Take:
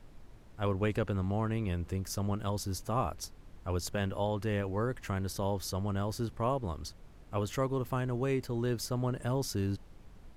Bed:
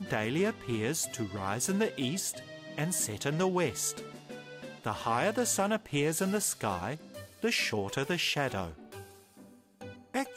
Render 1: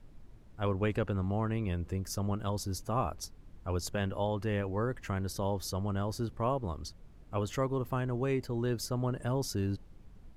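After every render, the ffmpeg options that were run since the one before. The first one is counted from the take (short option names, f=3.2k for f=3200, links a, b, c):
-af "afftdn=nr=6:nf=-54"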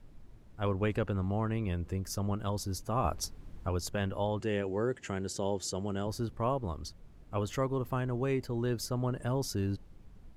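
-filter_complex "[0:a]asettb=1/sr,asplit=3[a][b][c];[a]atrim=end=3.044[d];[b]atrim=start=3.04:end=3.69,asetpts=PTS-STARTPTS,afade=t=in:d=0.004:c=qsin,afade=t=out:st=0.646:d=0.004:c=qsin,acontrast=30[e];[c]atrim=start=3.686[f];[d][e]acrossfade=d=0.004:c1=hsin:c2=qsin[g];[g][f]acrossfade=d=0.004:c1=qsin:c2=hsin,asettb=1/sr,asplit=3[h][i][j];[h]atrim=end=4.404[k];[i]atrim=start=4.4:end=6.07,asetpts=PTS-STARTPTS,afade=t=in:d=0.004:c=qsin,afade=t=out:st=1.666:d=0.004:c=qsin,highpass=130,equalizer=f=380:t=q:w=4:g=6,equalizer=f=1.1k:t=q:w=4:g=-7,equalizer=f=3k:t=q:w=4:g=4,equalizer=f=7.3k:t=q:w=4:g=10,lowpass=f=9.9k:w=0.5412,lowpass=f=9.9k:w=1.3066[l];[j]atrim=start=6.066[m];[k][l]acrossfade=d=0.004:c1=hsin:c2=qsin[n];[n][m]acrossfade=d=0.004:c1=qsin:c2=hsin"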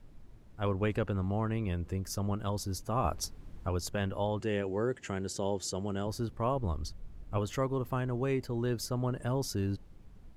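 -filter_complex "[0:a]asettb=1/sr,asplit=3[a][b][c];[a]atrim=end=6.564[d];[b]atrim=start=6.56:end=7.38,asetpts=PTS-STARTPTS,afade=t=in:d=0.004:c=qsin,afade=t=out:st=0.816:d=0.004:c=qsin,lowshelf=f=89:g=10[e];[c]atrim=start=7.376[f];[d][e]acrossfade=d=0.004:c1=hsin:c2=qsin[g];[g][f]acrossfade=d=0.004:c1=qsin:c2=hsin"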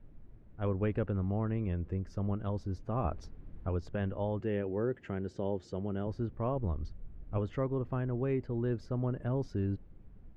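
-af "lowpass=1.7k,equalizer=f=1k:t=o:w=1.2:g=-6"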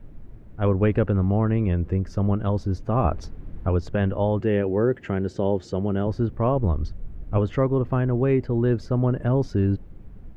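-af "volume=11.5dB"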